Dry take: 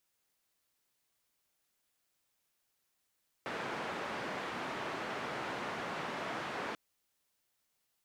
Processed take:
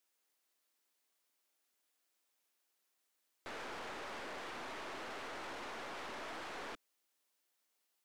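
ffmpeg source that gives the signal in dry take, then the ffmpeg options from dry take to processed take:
-f lavfi -i "anoisesrc=c=white:d=3.29:r=44100:seed=1,highpass=f=160,lowpass=f=1500,volume=-23dB"
-af "highpass=f=240:w=0.5412,highpass=f=240:w=1.3066,aeval=exprs='(tanh(141*val(0)+0.45)-tanh(0.45))/141':c=same"

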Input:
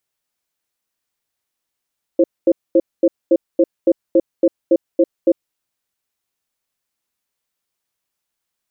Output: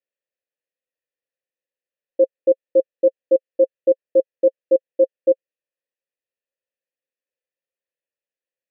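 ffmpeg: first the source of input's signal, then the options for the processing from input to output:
-f lavfi -i "aevalsrc='0.282*(sin(2*PI*334*t)+sin(2*PI*531*t))*clip(min(mod(t,0.28),0.05-mod(t,0.28))/0.005,0,1)':d=3.3:s=44100"
-filter_complex "[0:a]asplit=3[s0][s1][s2];[s0]bandpass=f=530:t=q:w=8,volume=1[s3];[s1]bandpass=f=1840:t=q:w=8,volume=0.501[s4];[s2]bandpass=f=2480:t=q:w=8,volume=0.355[s5];[s3][s4][s5]amix=inputs=3:normalize=0,lowshelf=f=420:g=7.5"

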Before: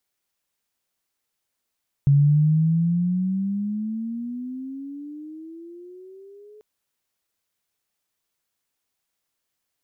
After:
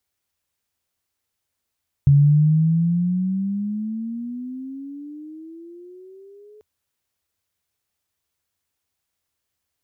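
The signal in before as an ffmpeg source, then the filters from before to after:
-f lavfi -i "aevalsrc='pow(10,(-12-32*t/4.54)/20)*sin(2*PI*139*4.54/(19.5*log(2)/12)*(exp(19.5*log(2)/12*t/4.54)-1))':d=4.54:s=44100"
-af "equalizer=f=81:w=1.9:g=13.5"

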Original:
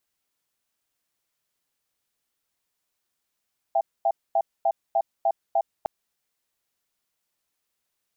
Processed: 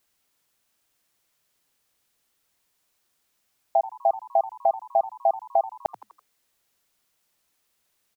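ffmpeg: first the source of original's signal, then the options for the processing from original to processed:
-f lavfi -i "aevalsrc='0.0891*(sin(2*PI*672*t)+sin(2*PI*791*t))*clip(min(mod(t,0.3),0.06-mod(t,0.3))/0.005,0,1)':d=2.11:s=44100"
-filter_complex "[0:a]asplit=2[s0][s1];[s1]acompressor=threshold=0.0316:ratio=6,volume=1.26[s2];[s0][s2]amix=inputs=2:normalize=0,asplit=5[s3][s4][s5][s6][s7];[s4]adelay=83,afreqshift=100,volume=0.158[s8];[s5]adelay=166,afreqshift=200,volume=0.0776[s9];[s6]adelay=249,afreqshift=300,volume=0.038[s10];[s7]adelay=332,afreqshift=400,volume=0.0186[s11];[s3][s8][s9][s10][s11]amix=inputs=5:normalize=0"

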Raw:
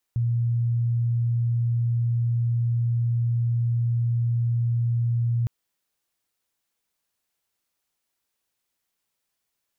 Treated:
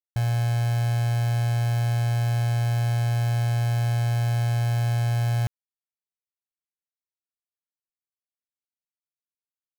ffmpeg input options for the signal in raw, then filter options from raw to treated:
-f lavfi -i "sine=f=118:d=5.31:r=44100,volume=-1.94dB"
-af "acrusher=bits=6:dc=4:mix=0:aa=0.000001"

